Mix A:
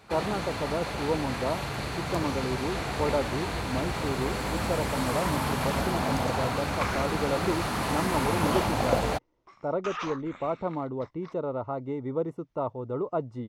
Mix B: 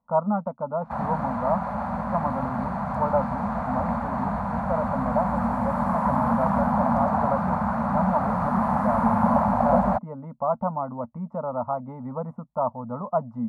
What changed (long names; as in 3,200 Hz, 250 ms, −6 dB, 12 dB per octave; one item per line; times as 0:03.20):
first sound: entry +0.80 s
second sound: muted
master: add drawn EQ curve 140 Hz 0 dB, 230 Hz +14 dB, 340 Hz −27 dB, 590 Hz +6 dB, 1,000 Hz +9 dB, 1,500 Hz 0 dB, 2,900 Hz −22 dB, 6,200 Hz −22 dB, 9,700 Hz −20 dB